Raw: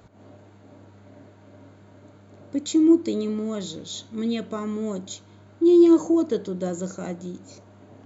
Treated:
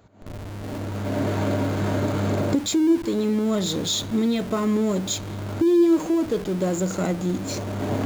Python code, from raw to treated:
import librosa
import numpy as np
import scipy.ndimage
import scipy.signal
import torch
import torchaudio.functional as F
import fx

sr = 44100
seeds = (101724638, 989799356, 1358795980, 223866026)

p1 = fx.recorder_agc(x, sr, target_db=-12.5, rise_db_per_s=21.0, max_gain_db=30)
p2 = fx.schmitt(p1, sr, flips_db=-36.0)
p3 = p1 + (p2 * 10.0 ** (-11.0 / 20.0))
y = p3 * 10.0 ** (-3.5 / 20.0)